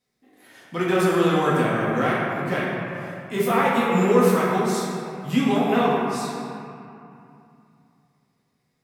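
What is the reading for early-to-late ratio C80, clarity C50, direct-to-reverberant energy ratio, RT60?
0.0 dB, -1.5 dB, -7.0 dB, 2.6 s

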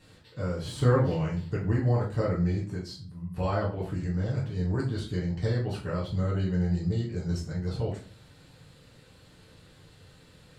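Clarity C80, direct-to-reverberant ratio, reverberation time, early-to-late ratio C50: 12.5 dB, -5.5 dB, 0.40 s, 7.5 dB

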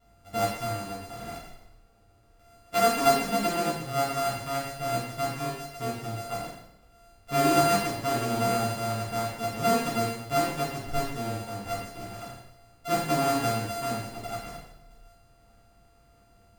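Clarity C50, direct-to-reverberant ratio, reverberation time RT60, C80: 2.0 dB, -10.0 dB, 0.80 s, 5.5 dB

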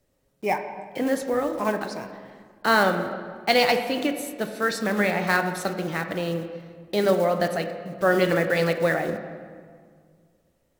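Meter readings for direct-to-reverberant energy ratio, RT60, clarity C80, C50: 6.5 dB, 1.9 s, 9.5 dB, 8.5 dB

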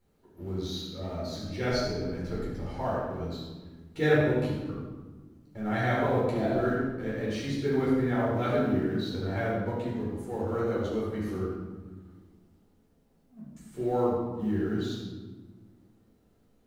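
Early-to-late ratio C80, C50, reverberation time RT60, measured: 1.5 dB, -1.0 dB, 1.3 s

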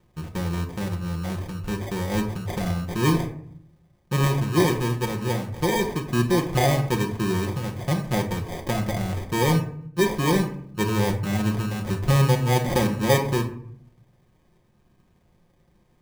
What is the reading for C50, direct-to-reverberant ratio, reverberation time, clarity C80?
10.5 dB, 2.0 dB, 0.65 s, 13.5 dB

